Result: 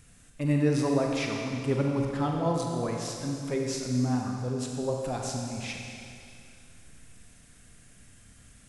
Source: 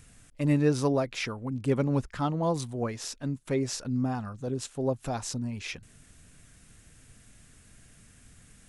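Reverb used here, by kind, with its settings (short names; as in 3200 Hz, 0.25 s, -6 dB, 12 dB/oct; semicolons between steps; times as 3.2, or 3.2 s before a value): Schroeder reverb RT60 2.5 s, combs from 32 ms, DRR 0.5 dB; gain -2 dB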